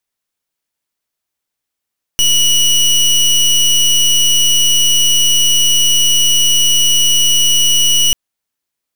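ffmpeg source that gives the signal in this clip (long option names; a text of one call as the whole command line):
ffmpeg -f lavfi -i "aevalsrc='0.299*(2*lt(mod(2930*t,1),0.25)-1)':duration=5.94:sample_rate=44100" out.wav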